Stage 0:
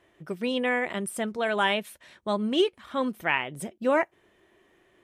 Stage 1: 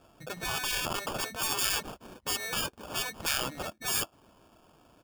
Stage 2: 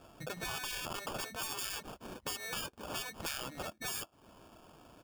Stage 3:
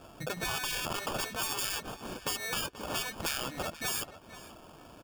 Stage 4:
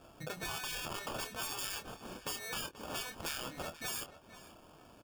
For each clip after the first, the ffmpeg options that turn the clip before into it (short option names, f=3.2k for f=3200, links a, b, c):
-af "aecho=1:1:1.3:0.89,acrusher=samples=22:mix=1:aa=0.000001,afftfilt=real='re*lt(hypot(re,im),0.1)':imag='im*lt(hypot(re,im),0.1)':win_size=1024:overlap=0.75,volume=2.5dB"
-af "acompressor=threshold=-42dB:ratio=3,volume=2.5dB"
-filter_complex "[0:a]asplit=2[a][b];[b]adelay=483,lowpass=f=4.3k:p=1,volume=-14dB,asplit=2[c][d];[d]adelay=483,lowpass=f=4.3k:p=1,volume=0.16[e];[a][c][e]amix=inputs=3:normalize=0,volume=5.5dB"
-filter_complex "[0:a]asplit=2[a][b];[b]adelay=26,volume=-8.5dB[c];[a][c]amix=inputs=2:normalize=0,volume=-6.5dB"